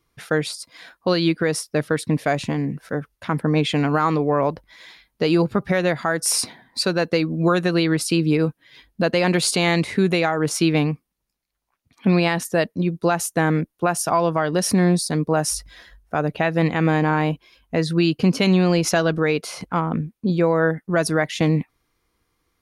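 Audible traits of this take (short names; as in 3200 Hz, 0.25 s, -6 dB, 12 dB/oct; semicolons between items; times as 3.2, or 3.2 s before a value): noise floor -75 dBFS; spectral tilt -5.0 dB/oct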